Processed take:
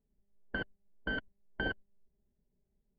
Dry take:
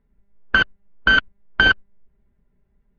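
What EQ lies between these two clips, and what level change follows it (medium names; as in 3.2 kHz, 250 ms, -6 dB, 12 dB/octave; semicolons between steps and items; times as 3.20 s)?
boxcar filter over 35 samples; bass shelf 220 Hz -9 dB; -6.5 dB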